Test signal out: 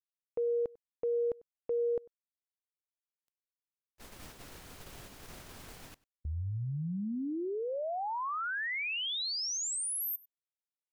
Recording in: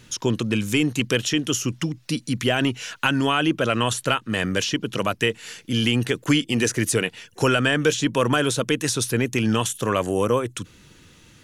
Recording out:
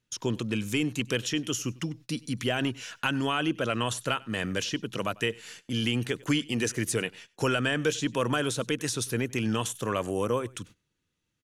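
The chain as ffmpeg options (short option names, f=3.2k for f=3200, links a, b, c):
-af "agate=range=-23dB:threshold=-40dB:ratio=16:detection=peak,aecho=1:1:97:0.0668,volume=-7dB"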